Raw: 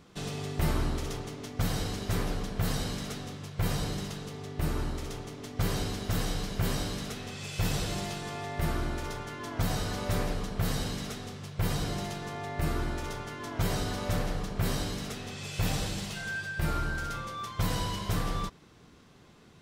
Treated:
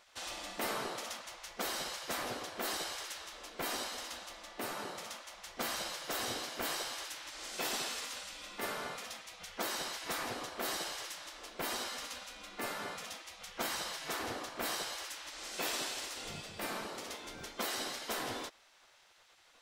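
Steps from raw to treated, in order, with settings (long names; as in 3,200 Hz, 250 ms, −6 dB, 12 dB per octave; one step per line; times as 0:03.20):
gate on every frequency bin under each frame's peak −15 dB weak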